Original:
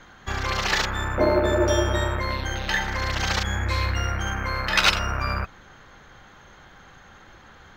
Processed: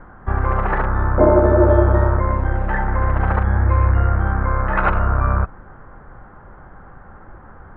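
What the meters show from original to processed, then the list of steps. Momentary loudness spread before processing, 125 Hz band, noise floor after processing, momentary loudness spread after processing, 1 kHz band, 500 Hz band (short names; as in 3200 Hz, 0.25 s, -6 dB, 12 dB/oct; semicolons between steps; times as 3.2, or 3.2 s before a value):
8 LU, +10.5 dB, -42 dBFS, 8 LU, +6.0 dB, +7.0 dB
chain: inverse Chebyshev low-pass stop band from 5900 Hz, stop band 70 dB; low shelf 66 Hz +8.5 dB; gain +7 dB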